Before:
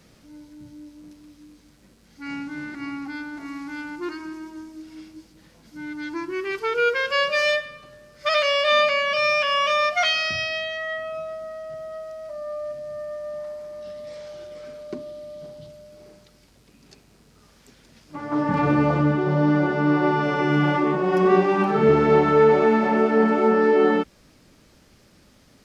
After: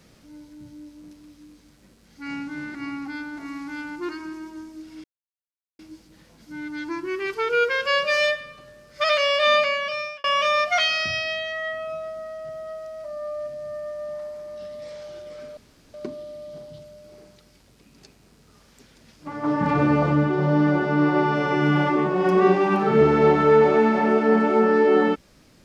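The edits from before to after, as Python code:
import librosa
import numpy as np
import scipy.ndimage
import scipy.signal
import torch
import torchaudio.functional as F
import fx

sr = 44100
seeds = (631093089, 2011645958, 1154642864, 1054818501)

y = fx.edit(x, sr, fx.insert_silence(at_s=5.04, length_s=0.75),
    fx.fade_out_span(start_s=8.85, length_s=0.64),
    fx.insert_room_tone(at_s=14.82, length_s=0.37), tone=tone)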